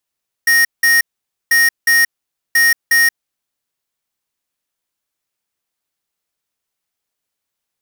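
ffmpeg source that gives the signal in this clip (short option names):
-f lavfi -i "aevalsrc='0.282*(2*lt(mod(1860*t,1),0.5)-1)*clip(min(mod(mod(t,1.04),0.36),0.18-mod(mod(t,1.04),0.36))/0.005,0,1)*lt(mod(t,1.04),0.72)':d=3.12:s=44100"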